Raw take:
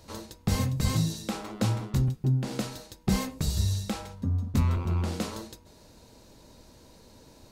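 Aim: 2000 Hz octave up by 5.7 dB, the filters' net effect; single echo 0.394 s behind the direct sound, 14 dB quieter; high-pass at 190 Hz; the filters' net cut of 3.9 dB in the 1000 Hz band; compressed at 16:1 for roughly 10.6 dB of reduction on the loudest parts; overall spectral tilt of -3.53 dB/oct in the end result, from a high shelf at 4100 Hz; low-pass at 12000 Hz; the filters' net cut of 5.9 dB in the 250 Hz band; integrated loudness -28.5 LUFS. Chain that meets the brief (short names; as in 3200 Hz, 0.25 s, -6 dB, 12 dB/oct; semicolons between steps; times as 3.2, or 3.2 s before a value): HPF 190 Hz; LPF 12000 Hz; bell 250 Hz -4.5 dB; bell 1000 Hz -7 dB; bell 2000 Hz +8 dB; high shelf 4100 Hz +3 dB; compressor 16:1, threshold -37 dBFS; echo 0.394 s -14 dB; gain +13 dB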